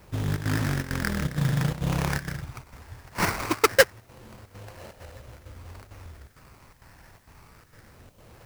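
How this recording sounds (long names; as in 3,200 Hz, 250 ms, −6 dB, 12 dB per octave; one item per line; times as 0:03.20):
phaser sweep stages 12, 0.25 Hz, lowest notch 430–4,300 Hz
aliases and images of a low sample rate 3,500 Hz, jitter 20%
chopped level 2.2 Hz, depth 65%, duty 80%
a quantiser's noise floor 12 bits, dither triangular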